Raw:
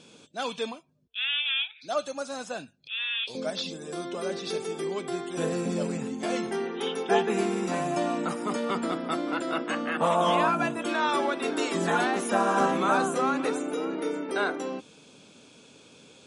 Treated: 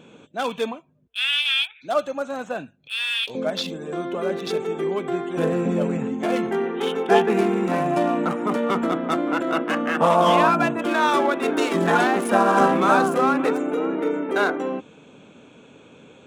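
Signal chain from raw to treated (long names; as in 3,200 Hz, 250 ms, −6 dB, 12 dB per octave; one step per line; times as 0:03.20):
adaptive Wiener filter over 9 samples
level +7 dB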